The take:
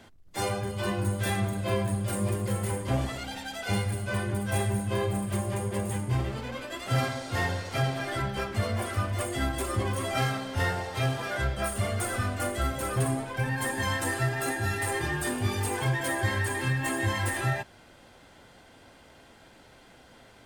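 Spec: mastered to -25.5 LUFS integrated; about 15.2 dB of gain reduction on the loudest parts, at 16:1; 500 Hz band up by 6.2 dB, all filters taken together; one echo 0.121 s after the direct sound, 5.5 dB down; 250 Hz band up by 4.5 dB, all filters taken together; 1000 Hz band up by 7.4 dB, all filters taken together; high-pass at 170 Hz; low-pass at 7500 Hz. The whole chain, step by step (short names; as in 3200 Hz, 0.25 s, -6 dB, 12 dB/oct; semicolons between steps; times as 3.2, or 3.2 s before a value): HPF 170 Hz; LPF 7500 Hz; bell 250 Hz +6 dB; bell 500 Hz +4 dB; bell 1000 Hz +8 dB; compressor 16:1, threshold -35 dBFS; echo 0.121 s -5.5 dB; gain +12.5 dB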